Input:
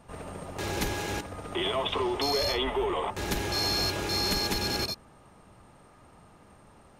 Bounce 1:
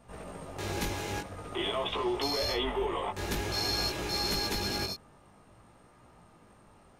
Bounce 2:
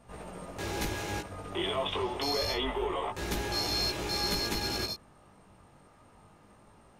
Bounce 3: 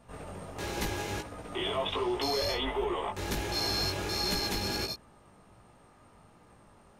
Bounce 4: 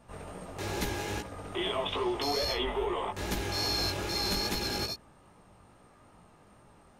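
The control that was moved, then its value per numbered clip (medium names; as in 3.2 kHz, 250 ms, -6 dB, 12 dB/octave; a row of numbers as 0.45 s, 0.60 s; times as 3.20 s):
chorus, rate: 0.5 Hz, 0.26 Hz, 1.4 Hz, 2.4 Hz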